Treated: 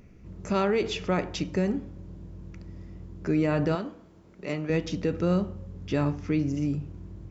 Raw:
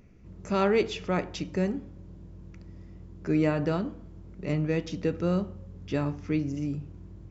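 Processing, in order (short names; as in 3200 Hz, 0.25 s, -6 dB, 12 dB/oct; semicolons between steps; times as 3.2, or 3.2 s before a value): 3.75–4.7 HPF 500 Hz 6 dB/oct; limiter -20 dBFS, peak gain reduction 6.5 dB; gain +3.5 dB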